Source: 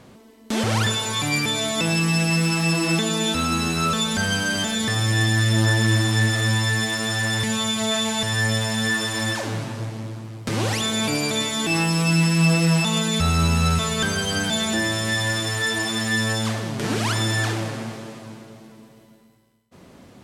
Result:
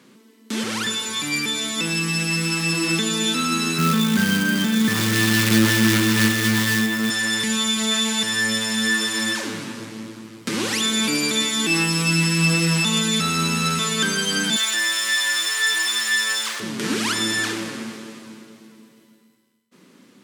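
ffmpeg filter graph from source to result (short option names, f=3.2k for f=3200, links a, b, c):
-filter_complex "[0:a]asettb=1/sr,asplit=3[a][b][c];[a]atrim=end=3.784[d];[b]atrim=start=3.78:end=7.1,asetpts=PTS-STARTPTS,afade=t=in:d=0.004:c=qsin,afade=t=out:st=3.316:d=0.004:c=qsin,bass=f=250:g=11,treble=f=4k:g=-15,acrusher=bits=3:mode=log:mix=0:aa=0.000001[e];[c]atrim=start=7.096[f];[d][e]acrossfade=d=0.004:c1=hsin:c2=qsin[g];[g][f]acrossfade=d=0.004:c1=qsin:c2=hsin,asettb=1/sr,asplit=3[h][i][j];[h]atrim=end=14.564[k];[i]atrim=start=14.56:end=16.6,asetpts=PTS-STARTPTS,afade=t=in:d=0.004:c=qsin,afade=t=out:st=2.036:d=0.004:c=qsin,aeval=exprs='val(0)+0.5*0.0282*sgn(val(0))':c=same,highpass=860[l];[j]atrim=start=16.596[m];[k][l]acrossfade=d=0.004:c1=hsin:c2=qsin[n];[n][m]acrossfade=d=0.004:c1=qsin:c2=hsin,highpass=f=190:w=0.5412,highpass=f=190:w=1.3066,equalizer=f=690:t=o:w=0.83:g=-14,dynaudnorm=f=590:g=9:m=4dB"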